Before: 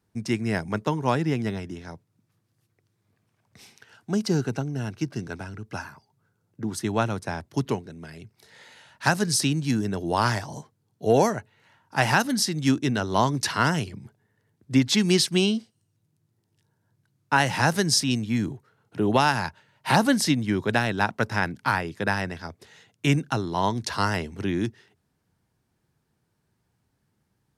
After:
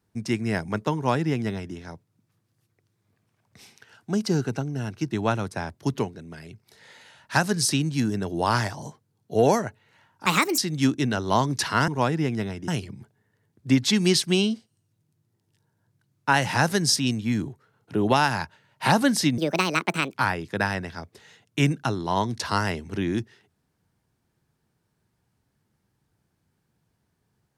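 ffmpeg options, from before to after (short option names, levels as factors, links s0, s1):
-filter_complex "[0:a]asplit=8[s0][s1][s2][s3][s4][s5][s6][s7];[s0]atrim=end=5.112[s8];[s1]atrim=start=6.818:end=11.974[s9];[s2]atrim=start=11.97:end=12.42,asetpts=PTS-STARTPTS,asetrate=62181,aresample=44100,atrim=end_sample=14074,asetpts=PTS-STARTPTS[s10];[s3]atrim=start=12.416:end=13.722[s11];[s4]atrim=start=0.948:end=1.752[s12];[s5]atrim=start=13.718:end=20.424[s13];[s6]atrim=start=20.42:end=21.61,asetpts=PTS-STARTPTS,asetrate=68796,aresample=44100,atrim=end_sample=33640,asetpts=PTS-STARTPTS[s14];[s7]atrim=start=21.606[s15];[s8][s9]acrossfade=d=0.004:c1=hsin:c2=hsin[s16];[s16][s10]acrossfade=d=0.004:c1=hsin:c2=hsin[s17];[s17][s11]acrossfade=d=0.004:c1=hsin:c2=hsin[s18];[s18][s12]acrossfade=d=0.004:c1=hsin:c2=hsin[s19];[s19][s13]acrossfade=d=0.004:c1=hsin:c2=hsin[s20];[s20][s14]acrossfade=d=0.004:c1=hsin:c2=hsin[s21];[s21][s15]acrossfade=d=0.004:c1=hsin:c2=hsin"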